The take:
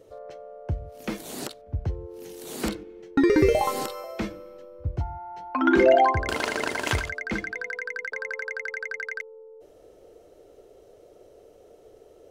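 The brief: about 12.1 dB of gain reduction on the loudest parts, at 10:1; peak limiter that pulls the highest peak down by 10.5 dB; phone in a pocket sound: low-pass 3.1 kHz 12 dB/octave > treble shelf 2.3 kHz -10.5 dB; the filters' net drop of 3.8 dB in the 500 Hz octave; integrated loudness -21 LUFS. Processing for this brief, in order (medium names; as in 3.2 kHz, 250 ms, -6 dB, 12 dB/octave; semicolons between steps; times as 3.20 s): peaking EQ 500 Hz -4.5 dB; compression 10:1, threshold -29 dBFS; peak limiter -24.5 dBFS; low-pass 3.1 kHz 12 dB/octave; treble shelf 2.3 kHz -10.5 dB; trim +18 dB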